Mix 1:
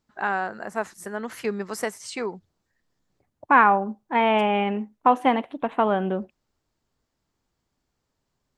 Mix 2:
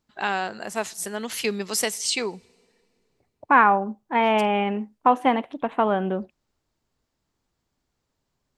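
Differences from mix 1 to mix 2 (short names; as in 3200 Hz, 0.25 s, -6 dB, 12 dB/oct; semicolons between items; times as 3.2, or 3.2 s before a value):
first voice: add resonant high shelf 2200 Hz +10.5 dB, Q 1.5; reverb: on, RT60 2.4 s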